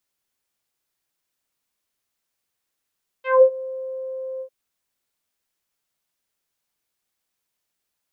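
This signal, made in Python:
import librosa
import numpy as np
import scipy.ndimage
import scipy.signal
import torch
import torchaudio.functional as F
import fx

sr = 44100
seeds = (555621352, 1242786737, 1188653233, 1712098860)

y = fx.sub_voice(sr, note=72, wave='saw', cutoff_hz=580.0, q=2.2, env_oct=2.5, env_s=0.17, attack_ms=176.0, decay_s=0.08, sustain_db=-21.5, release_s=0.08, note_s=1.17, slope=24)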